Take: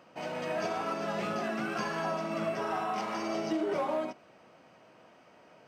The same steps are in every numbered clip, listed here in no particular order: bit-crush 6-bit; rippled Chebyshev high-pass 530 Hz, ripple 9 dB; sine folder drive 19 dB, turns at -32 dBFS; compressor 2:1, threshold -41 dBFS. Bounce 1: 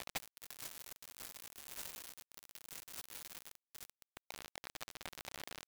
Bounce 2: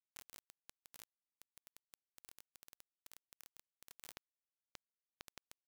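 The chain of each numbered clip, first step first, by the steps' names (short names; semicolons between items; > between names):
rippled Chebyshev high-pass > sine folder > compressor > bit-crush; sine folder > compressor > rippled Chebyshev high-pass > bit-crush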